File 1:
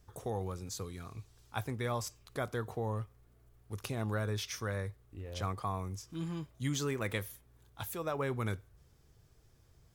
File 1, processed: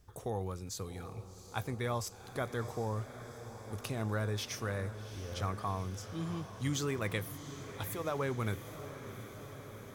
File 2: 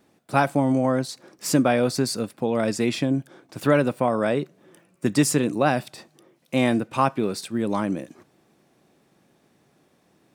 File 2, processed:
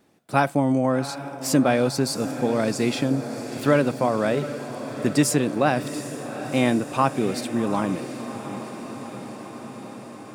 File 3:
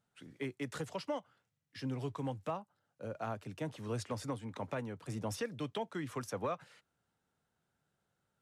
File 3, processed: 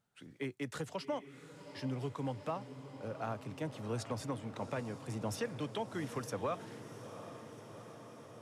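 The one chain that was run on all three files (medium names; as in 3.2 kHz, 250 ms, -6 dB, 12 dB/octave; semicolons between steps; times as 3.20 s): echo that smears into a reverb 745 ms, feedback 73%, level -12 dB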